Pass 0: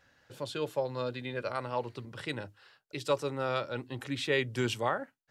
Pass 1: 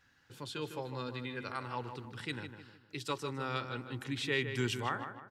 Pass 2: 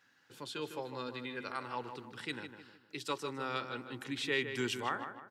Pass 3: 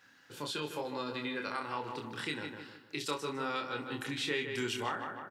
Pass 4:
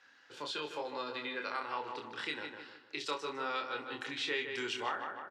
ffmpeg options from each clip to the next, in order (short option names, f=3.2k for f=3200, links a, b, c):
-filter_complex "[0:a]equalizer=f=590:w=2.7:g=-14,asplit=2[a][b];[b]adelay=154,lowpass=f=2.7k:p=1,volume=-8dB,asplit=2[c][d];[d]adelay=154,lowpass=f=2.7k:p=1,volume=0.42,asplit=2[e][f];[f]adelay=154,lowpass=f=2.7k:p=1,volume=0.42,asplit=2[g][h];[h]adelay=154,lowpass=f=2.7k:p=1,volume=0.42,asplit=2[i][j];[j]adelay=154,lowpass=f=2.7k:p=1,volume=0.42[k];[a][c][e][g][i][k]amix=inputs=6:normalize=0,volume=-2dB"
-af "highpass=200"
-filter_complex "[0:a]acompressor=threshold=-41dB:ratio=2.5,asplit=2[a][b];[b]aecho=0:1:27|65:0.631|0.178[c];[a][c]amix=inputs=2:normalize=0,volume=5.5dB"
-filter_complex "[0:a]acrossover=split=340 6900:gain=0.2 1 0.0631[a][b][c];[a][b][c]amix=inputs=3:normalize=0"